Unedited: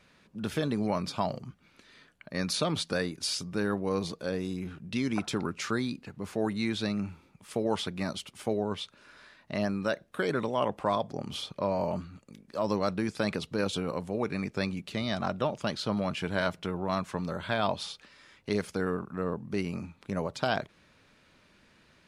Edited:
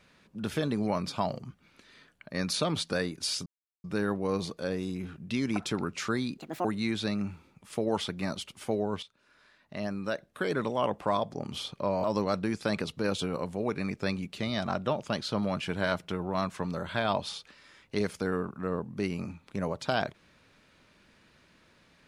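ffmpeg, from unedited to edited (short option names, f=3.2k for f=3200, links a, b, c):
-filter_complex "[0:a]asplit=6[a][b][c][d][e][f];[a]atrim=end=3.46,asetpts=PTS-STARTPTS,afade=t=out:st=3.456:d=0.004:c=hsin,apad=pad_dur=0.38[g];[b]atrim=start=3.46:end=6.004,asetpts=PTS-STARTPTS,afade=t=in:d=0.004:c=hsin[h];[c]atrim=start=6:end=6.43,asetpts=PTS-STARTPTS,asetrate=71001,aresample=44100,atrim=end_sample=11778,asetpts=PTS-STARTPTS[i];[d]atrim=start=6.426:end=8.81,asetpts=PTS-STARTPTS,afade=t=out:st=2.38:d=0.004:c=hsin:silence=0.199526[j];[e]atrim=start=8.81:end=11.822,asetpts=PTS-STARTPTS,afade=t=in:d=1.62:silence=0.199526[k];[f]atrim=start=12.578[l];[g][h]concat=n=2:v=0:a=1[m];[m][i]acrossfade=d=0.004:c1=hsin:c2=hsin[n];[j][k]concat=n=2:v=0:a=1[o];[n][o]acrossfade=d=0.004:c1=hsin:c2=hsin[p];[p][l]acrossfade=d=0.004:c1=hsin:c2=hsin"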